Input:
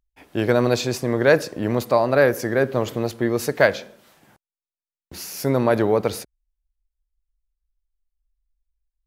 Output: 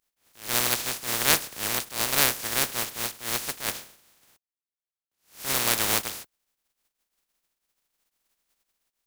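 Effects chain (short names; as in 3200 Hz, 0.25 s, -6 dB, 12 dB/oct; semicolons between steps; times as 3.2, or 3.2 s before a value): spectral contrast lowered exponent 0.13; attack slew limiter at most 170 dB/s; gain -5.5 dB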